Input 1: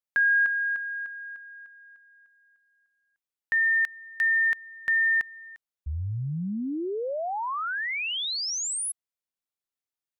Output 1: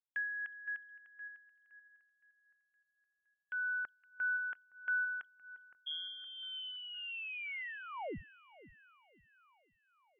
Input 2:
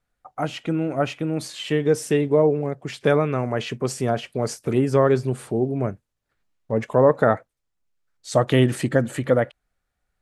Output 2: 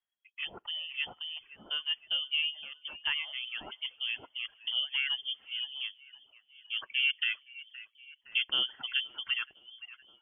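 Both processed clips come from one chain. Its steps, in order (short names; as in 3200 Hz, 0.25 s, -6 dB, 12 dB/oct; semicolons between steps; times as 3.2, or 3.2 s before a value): split-band echo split 320 Hz, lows 0.365 s, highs 0.516 s, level -15 dB; reverb removal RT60 1.1 s; inverted band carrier 3300 Hz; harmonic tremolo 1.6 Hz, depth 70%, crossover 2500 Hz; low shelf 180 Hz -7 dB; mismatched tape noise reduction decoder only; gain -9 dB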